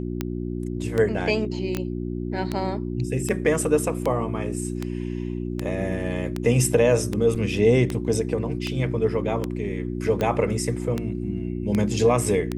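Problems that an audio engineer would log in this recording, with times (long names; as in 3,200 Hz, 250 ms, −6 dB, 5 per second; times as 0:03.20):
mains hum 60 Hz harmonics 6 −29 dBFS
scratch tick 78 rpm −12 dBFS
0:01.77: click −13 dBFS
0:07.35–0:07.36: drop-out 5.2 ms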